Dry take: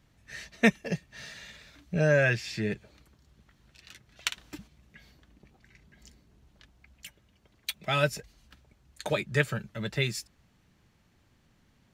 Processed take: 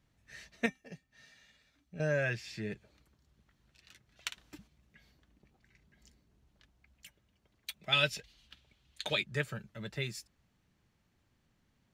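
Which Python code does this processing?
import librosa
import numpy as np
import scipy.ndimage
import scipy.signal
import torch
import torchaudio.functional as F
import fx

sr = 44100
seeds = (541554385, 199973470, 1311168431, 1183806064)

y = fx.comb_fb(x, sr, f0_hz=260.0, decay_s=0.16, harmonics='odd', damping=0.0, mix_pct=70, at=(0.66, 2.0))
y = fx.peak_eq(y, sr, hz=3300.0, db=15.0, octaves=1.3, at=(7.92, 9.24))
y = y * librosa.db_to_amplitude(-8.5)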